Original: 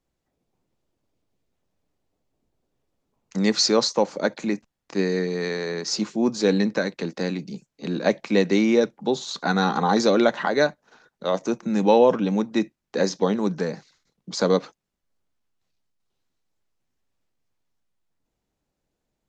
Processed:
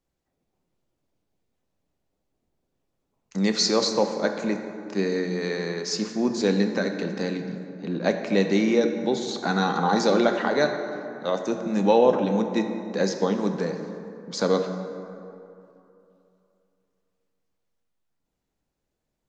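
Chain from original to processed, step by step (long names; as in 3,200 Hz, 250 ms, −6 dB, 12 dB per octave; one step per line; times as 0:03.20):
0:07.44–0:08.04: high-shelf EQ 3,000 Hz −10.5 dB
dense smooth reverb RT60 2.9 s, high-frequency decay 0.45×, DRR 5.5 dB
level −2.5 dB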